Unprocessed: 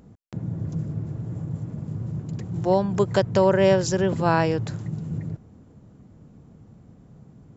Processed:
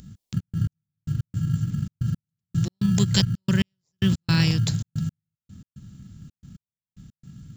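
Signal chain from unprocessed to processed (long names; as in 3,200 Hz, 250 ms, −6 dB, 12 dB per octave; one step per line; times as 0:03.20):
drawn EQ curve 190 Hz 0 dB, 610 Hz −28 dB, 3,600 Hz +9 dB
in parallel at −11 dB: sample-rate reduction 1,500 Hz, jitter 0%
on the sum: gate pattern "xxx.x...x.x" 112 BPM −60 dB
level +4.5 dB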